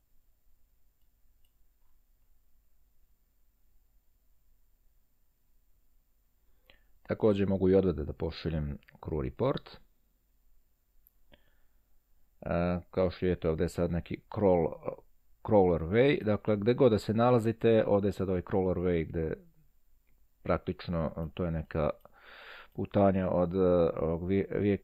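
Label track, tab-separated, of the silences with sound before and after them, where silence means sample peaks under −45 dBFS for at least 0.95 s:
9.760000	11.070000	silence
11.340000	12.430000	silence
19.400000	20.450000	silence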